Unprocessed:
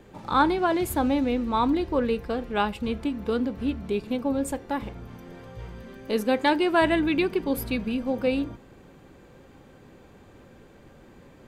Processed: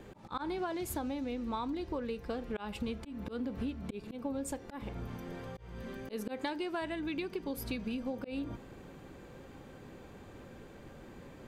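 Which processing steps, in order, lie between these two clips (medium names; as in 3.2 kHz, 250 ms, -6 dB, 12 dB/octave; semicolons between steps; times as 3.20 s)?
slow attack 293 ms; dynamic bell 5.8 kHz, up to +6 dB, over -52 dBFS, Q 1.4; compression 20:1, threshold -33 dBFS, peak gain reduction 18 dB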